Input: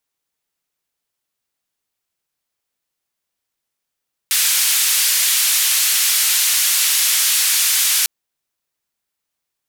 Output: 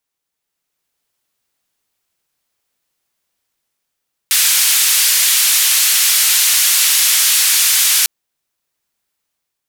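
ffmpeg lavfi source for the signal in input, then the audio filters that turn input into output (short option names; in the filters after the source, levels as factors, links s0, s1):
-f lavfi -i "anoisesrc=c=white:d=3.75:r=44100:seed=1,highpass=f=2100,lowpass=f=14000,volume=-8.4dB"
-af "dynaudnorm=f=210:g=7:m=2.24"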